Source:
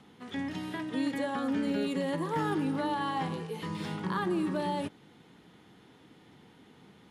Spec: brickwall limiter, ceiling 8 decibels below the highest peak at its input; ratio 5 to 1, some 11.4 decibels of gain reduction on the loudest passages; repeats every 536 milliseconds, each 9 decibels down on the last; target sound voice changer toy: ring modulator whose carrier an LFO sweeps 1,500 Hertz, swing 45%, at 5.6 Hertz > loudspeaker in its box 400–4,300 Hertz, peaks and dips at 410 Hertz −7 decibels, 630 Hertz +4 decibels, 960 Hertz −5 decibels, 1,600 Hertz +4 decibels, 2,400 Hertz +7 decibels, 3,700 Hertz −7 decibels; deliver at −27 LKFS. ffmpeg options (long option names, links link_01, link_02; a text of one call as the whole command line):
ffmpeg -i in.wav -af "acompressor=threshold=-40dB:ratio=5,alimiter=level_in=14dB:limit=-24dB:level=0:latency=1,volume=-14dB,aecho=1:1:536|1072|1608|2144:0.355|0.124|0.0435|0.0152,aeval=exprs='val(0)*sin(2*PI*1500*n/s+1500*0.45/5.6*sin(2*PI*5.6*n/s))':channel_layout=same,highpass=400,equalizer=frequency=410:width_type=q:width=4:gain=-7,equalizer=frequency=630:width_type=q:width=4:gain=4,equalizer=frequency=960:width_type=q:width=4:gain=-5,equalizer=frequency=1600:width_type=q:width=4:gain=4,equalizer=frequency=2400:width_type=q:width=4:gain=7,equalizer=frequency=3700:width_type=q:width=4:gain=-7,lowpass=frequency=4300:width=0.5412,lowpass=frequency=4300:width=1.3066,volume=18dB" out.wav